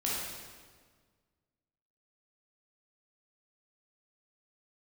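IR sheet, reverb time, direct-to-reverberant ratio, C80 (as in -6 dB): 1.6 s, -6.5 dB, 1.0 dB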